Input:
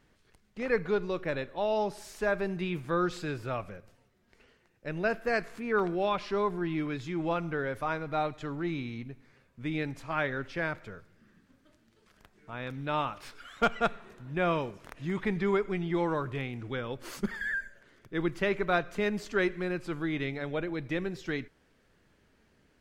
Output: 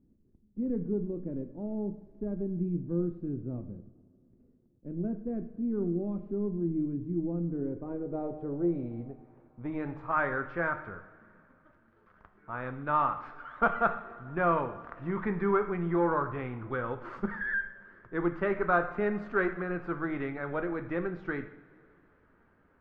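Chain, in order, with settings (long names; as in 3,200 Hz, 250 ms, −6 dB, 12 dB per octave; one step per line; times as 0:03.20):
gain on one half-wave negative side −3 dB
coupled-rooms reverb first 0.6 s, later 3 s, from −18 dB, DRR 7.5 dB
soft clipping −17.5 dBFS, distortion −22 dB
low-pass filter sweep 260 Hz → 1,300 Hz, 0:07.39–0:10.21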